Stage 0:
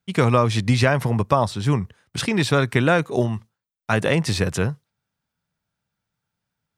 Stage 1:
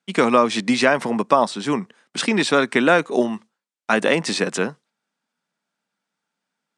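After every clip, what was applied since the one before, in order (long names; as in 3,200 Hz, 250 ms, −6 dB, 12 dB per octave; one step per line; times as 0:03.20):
elliptic band-pass filter 220–8,800 Hz, stop band 40 dB
level +3.5 dB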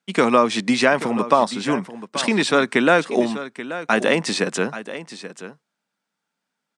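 single-tap delay 832 ms −13.5 dB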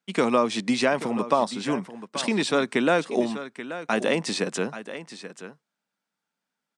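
dynamic equaliser 1,600 Hz, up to −4 dB, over −31 dBFS, Q 1.2
level −4.5 dB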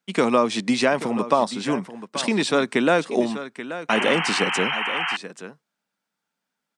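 sound drawn into the spectrogram noise, 0:03.89–0:05.17, 700–3,200 Hz −28 dBFS
level +2.5 dB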